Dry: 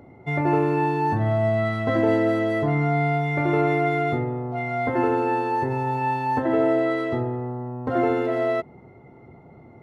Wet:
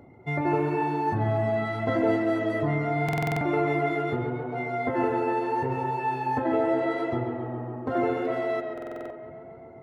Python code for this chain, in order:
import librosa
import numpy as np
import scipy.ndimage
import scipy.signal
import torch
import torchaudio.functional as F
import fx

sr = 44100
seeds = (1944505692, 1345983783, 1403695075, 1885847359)

p1 = fx.dereverb_blind(x, sr, rt60_s=0.61)
p2 = p1 + fx.echo_tape(p1, sr, ms=137, feedback_pct=87, wet_db=-6.5, lp_hz=2700.0, drive_db=15.0, wow_cents=35, dry=0)
p3 = fx.buffer_glitch(p2, sr, at_s=(3.04, 8.73), block=2048, repeats=7)
y = p3 * librosa.db_to_amplitude(-3.0)